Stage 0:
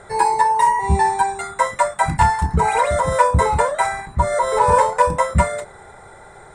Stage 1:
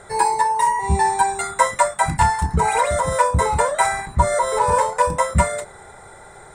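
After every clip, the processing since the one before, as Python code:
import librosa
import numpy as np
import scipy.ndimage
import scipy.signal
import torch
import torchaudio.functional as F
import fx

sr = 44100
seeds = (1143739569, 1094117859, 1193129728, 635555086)

y = fx.high_shelf(x, sr, hz=5400.0, db=7.5)
y = fx.rider(y, sr, range_db=10, speed_s=0.5)
y = y * 10.0 ** (-1.5 / 20.0)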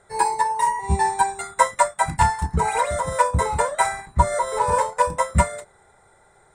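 y = fx.upward_expand(x, sr, threshold_db=-38.0, expansion=1.5)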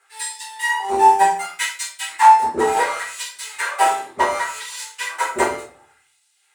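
y = fx.lower_of_two(x, sr, delay_ms=2.4)
y = fx.filter_lfo_highpass(y, sr, shape='sine', hz=0.68, low_hz=330.0, high_hz=4200.0, q=1.5)
y = fx.room_shoebox(y, sr, seeds[0], volume_m3=37.0, walls='mixed', distance_m=1.2)
y = y * 10.0 ** (-4.5 / 20.0)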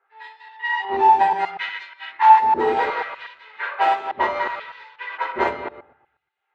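y = fx.reverse_delay(x, sr, ms=121, wet_db=-4.0)
y = fx.env_lowpass(y, sr, base_hz=1200.0, full_db=-11.0)
y = scipy.signal.sosfilt(scipy.signal.butter(4, 3900.0, 'lowpass', fs=sr, output='sos'), y)
y = y * 10.0 ** (-3.5 / 20.0)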